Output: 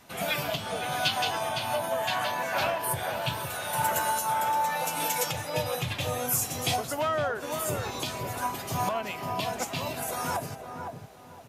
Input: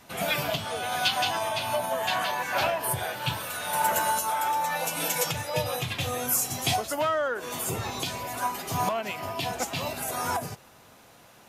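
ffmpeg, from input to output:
-filter_complex "[0:a]asplit=2[s0][s1];[s1]adelay=511,lowpass=f=900:p=1,volume=0.631,asplit=2[s2][s3];[s3]adelay=511,lowpass=f=900:p=1,volume=0.35,asplit=2[s4][s5];[s5]adelay=511,lowpass=f=900:p=1,volume=0.35,asplit=2[s6][s7];[s7]adelay=511,lowpass=f=900:p=1,volume=0.35[s8];[s0][s2][s4][s6][s8]amix=inputs=5:normalize=0,volume=0.794"

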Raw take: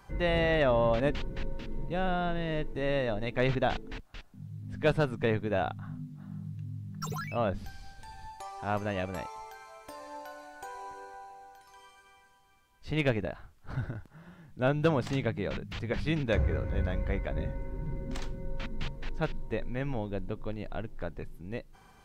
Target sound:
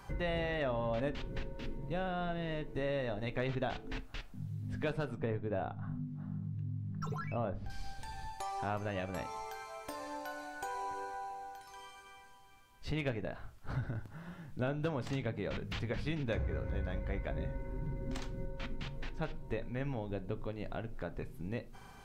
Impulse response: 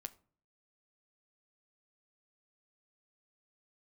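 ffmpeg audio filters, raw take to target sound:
-filter_complex "[0:a]asettb=1/sr,asplit=3[s0][s1][s2];[s0]atrim=end=5.164[s3];[s1]atrim=start=5.16:end=7.7,asetpts=PTS-STARTPTS,afade=t=in:d=0.004:c=qsin,afade=t=out:st=2.536:d=0.004:c=qsin,lowpass=f=1100:p=1[s4];[s2]atrim=start=7.696[s5];[s3][s4]acrossfade=d=0.004:c1=hsin:c2=qsin[s6];[s6][s5]acrossfade=d=0.004:c1=qsin:c2=hsin,acompressor=threshold=0.0112:ratio=3[s7];[1:a]atrim=start_sample=2205,asetrate=48510,aresample=44100[s8];[s7][s8]afir=irnorm=-1:irlink=0,volume=2.66"

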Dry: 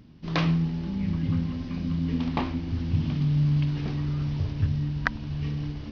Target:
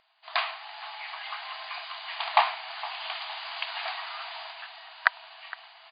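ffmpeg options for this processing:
-filter_complex "[0:a]afftfilt=real='re*between(b*sr/4096,630,4900)':imag='im*between(b*sr/4096,630,4900)':win_size=4096:overlap=0.75,dynaudnorm=f=120:g=11:m=3.76,asplit=2[s0][s1];[s1]adelay=463,lowpass=f=2000:p=1,volume=0.158,asplit=2[s2][s3];[s3]adelay=463,lowpass=f=2000:p=1,volume=0.51,asplit=2[s4][s5];[s5]adelay=463,lowpass=f=2000:p=1,volume=0.51,asplit=2[s6][s7];[s7]adelay=463,lowpass=f=2000:p=1,volume=0.51,asplit=2[s8][s9];[s9]adelay=463,lowpass=f=2000:p=1,volume=0.51[s10];[s2][s4][s6][s8][s10]amix=inputs=5:normalize=0[s11];[s0][s11]amix=inputs=2:normalize=0"

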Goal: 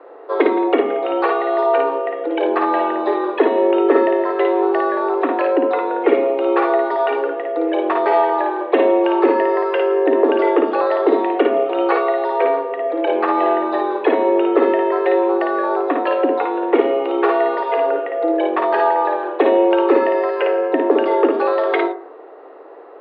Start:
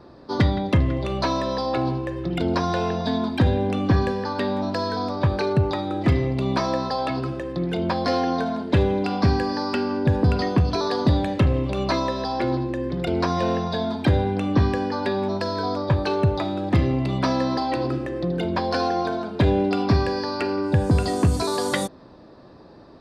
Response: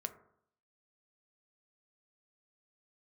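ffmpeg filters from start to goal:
-filter_complex "[0:a]highpass=f=190:t=q:w=0.5412,highpass=f=190:t=q:w=1.307,lowpass=f=3000:t=q:w=0.5176,lowpass=f=3000:t=q:w=0.7071,lowpass=f=3000:t=q:w=1.932,afreqshift=150,aemphasis=mode=reproduction:type=bsi,asplit=2[s0][s1];[1:a]atrim=start_sample=2205,adelay=55[s2];[s1][s2]afir=irnorm=-1:irlink=0,volume=0.794[s3];[s0][s3]amix=inputs=2:normalize=0,volume=1.88"

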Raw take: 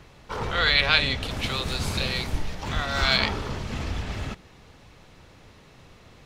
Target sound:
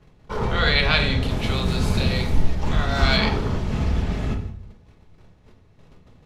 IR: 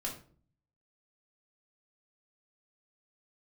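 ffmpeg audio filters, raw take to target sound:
-filter_complex "[0:a]agate=range=0.2:threshold=0.00398:ratio=16:detection=peak,tiltshelf=f=780:g=4.5,asplit=2[s0][s1];[1:a]atrim=start_sample=2205,afade=t=out:st=0.35:d=0.01,atrim=end_sample=15876,asetrate=29106,aresample=44100[s2];[s1][s2]afir=irnorm=-1:irlink=0,volume=0.891[s3];[s0][s3]amix=inputs=2:normalize=0,volume=0.708"

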